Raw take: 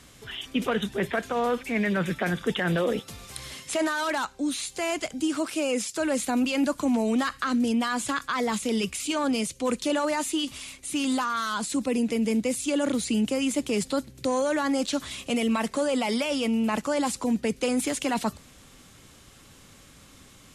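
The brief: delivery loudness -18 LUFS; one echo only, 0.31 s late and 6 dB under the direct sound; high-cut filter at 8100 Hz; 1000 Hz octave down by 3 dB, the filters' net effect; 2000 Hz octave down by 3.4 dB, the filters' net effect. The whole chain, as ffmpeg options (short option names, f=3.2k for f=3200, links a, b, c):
-af "lowpass=8.1k,equalizer=f=1k:t=o:g=-3,equalizer=f=2k:t=o:g=-3.5,aecho=1:1:310:0.501,volume=9dB"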